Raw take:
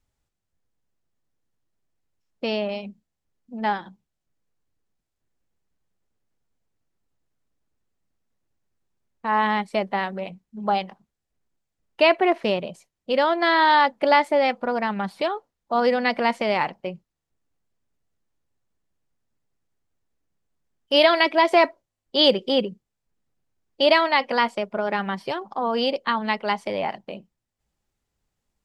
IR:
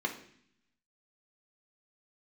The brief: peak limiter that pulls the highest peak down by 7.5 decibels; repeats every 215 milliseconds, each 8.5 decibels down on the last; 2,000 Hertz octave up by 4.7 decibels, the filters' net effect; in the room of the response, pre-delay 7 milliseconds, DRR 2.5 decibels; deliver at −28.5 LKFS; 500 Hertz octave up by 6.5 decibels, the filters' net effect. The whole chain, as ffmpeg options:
-filter_complex "[0:a]equalizer=frequency=500:width_type=o:gain=8,equalizer=frequency=2000:width_type=o:gain=5,alimiter=limit=-6.5dB:level=0:latency=1,aecho=1:1:215|430|645|860:0.376|0.143|0.0543|0.0206,asplit=2[link_01][link_02];[1:a]atrim=start_sample=2205,adelay=7[link_03];[link_02][link_03]afir=irnorm=-1:irlink=0,volume=-8dB[link_04];[link_01][link_04]amix=inputs=2:normalize=0,volume=-12dB"

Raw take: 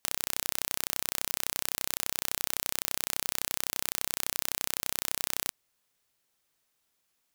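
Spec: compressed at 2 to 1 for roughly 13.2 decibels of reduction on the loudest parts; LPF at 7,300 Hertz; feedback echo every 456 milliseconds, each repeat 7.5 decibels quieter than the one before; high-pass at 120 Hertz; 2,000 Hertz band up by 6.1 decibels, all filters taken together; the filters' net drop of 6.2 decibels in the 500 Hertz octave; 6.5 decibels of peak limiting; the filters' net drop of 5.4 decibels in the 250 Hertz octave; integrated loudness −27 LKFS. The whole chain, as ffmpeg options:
ffmpeg -i in.wav -af "highpass=120,lowpass=7300,equalizer=frequency=250:width_type=o:gain=-4.5,equalizer=frequency=500:width_type=o:gain=-7.5,equalizer=frequency=2000:width_type=o:gain=8,acompressor=threshold=-52dB:ratio=2,alimiter=level_in=2dB:limit=-24dB:level=0:latency=1,volume=-2dB,aecho=1:1:456|912|1368|1824|2280:0.422|0.177|0.0744|0.0312|0.0131,volume=23dB" out.wav

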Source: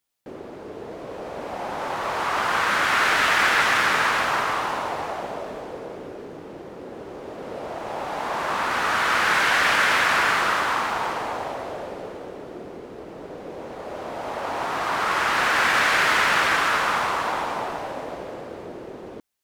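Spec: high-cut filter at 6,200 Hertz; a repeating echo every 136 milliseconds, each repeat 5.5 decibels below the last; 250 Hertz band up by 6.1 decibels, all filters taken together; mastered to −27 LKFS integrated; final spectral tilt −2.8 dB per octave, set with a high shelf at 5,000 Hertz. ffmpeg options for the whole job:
ffmpeg -i in.wav -af "lowpass=6200,equalizer=frequency=250:width_type=o:gain=8,highshelf=frequency=5000:gain=3.5,aecho=1:1:136|272|408|544|680|816|952:0.531|0.281|0.149|0.079|0.0419|0.0222|0.0118,volume=-7dB" out.wav

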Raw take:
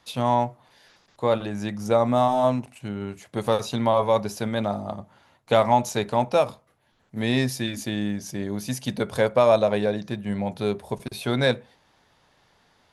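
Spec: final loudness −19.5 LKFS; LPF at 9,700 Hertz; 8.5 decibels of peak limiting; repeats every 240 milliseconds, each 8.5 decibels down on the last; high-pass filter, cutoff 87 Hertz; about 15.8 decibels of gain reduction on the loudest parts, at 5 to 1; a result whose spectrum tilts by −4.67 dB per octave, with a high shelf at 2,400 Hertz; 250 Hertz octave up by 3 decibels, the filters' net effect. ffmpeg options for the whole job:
ffmpeg -i in.wav -af "highpass=87,lowpass=9700,equalizer=frequency=250:width_type=o:gain=3.5,highshelf=frequency=2400:gain=5.5,acompressor=threshold=-31dB:ratio=5,alimiter=limit=-23.5dB:level=0:latency=1,aecho=1:1:240|480|720|960:0.376|0.143|0.0543|0.0206,volume=16dB" out.wav

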